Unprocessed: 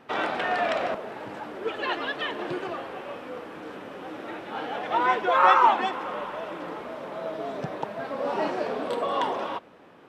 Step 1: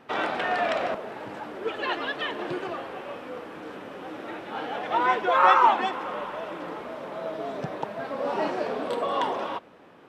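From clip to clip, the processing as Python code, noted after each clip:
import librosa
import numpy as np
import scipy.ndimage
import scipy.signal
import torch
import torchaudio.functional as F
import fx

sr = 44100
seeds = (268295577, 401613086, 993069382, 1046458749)

y = x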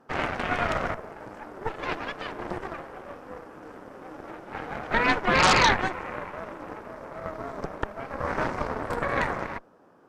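y = fx.band_shelf(x, sr, hz=2800.0, db=-11.5, octaves=1.3)
y = fx.cheby_harmonics(y, sr, harmonics=(8,), levels_db=(-7,), full_scale_db=-6.0)
y = F.gain(torch.from_numpy(y), -5.0).numpy()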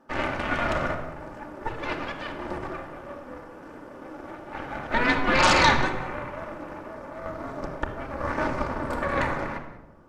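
y = x + 10.0 ** (-18.5 / 20.0) * np.pad(x, (int(185 * sr / 1000.0), 0))[:len(x)]
y = fx.room_shoebox(y, sr, seeds[0], volume_m3=3500.0, walls='furnished', distance_m=2.5)
y = F.gain(torch.from_numpy(y), -1.5).numpy()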